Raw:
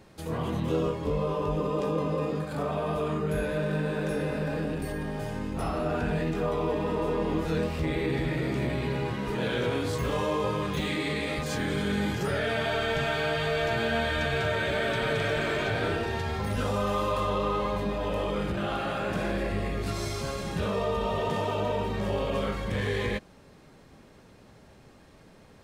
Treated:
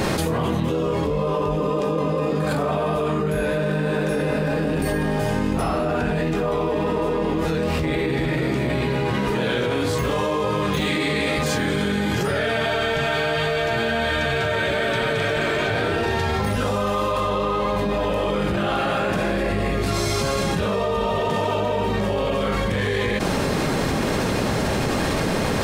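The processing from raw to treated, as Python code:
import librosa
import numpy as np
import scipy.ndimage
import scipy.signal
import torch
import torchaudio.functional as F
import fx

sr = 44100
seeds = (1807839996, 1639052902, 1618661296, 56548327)

y = fx.low_shelf(x, sr, hz=100.0, db=-5.0)
y = fx.env_flatten(y, sr, amount_pct=100)
y = y * 10.0 ** (2.5 / 20.0)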